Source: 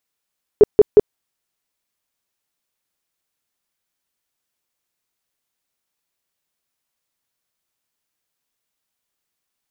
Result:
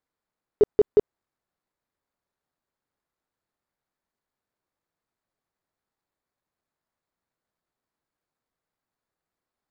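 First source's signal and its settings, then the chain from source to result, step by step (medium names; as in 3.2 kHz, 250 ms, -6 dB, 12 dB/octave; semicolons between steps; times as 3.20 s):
tone bursts 419 Hz, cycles 11, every 0.18 s, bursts 3, -3 dBFS
median filter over 15 samples; peak limiter -10.5 dBFS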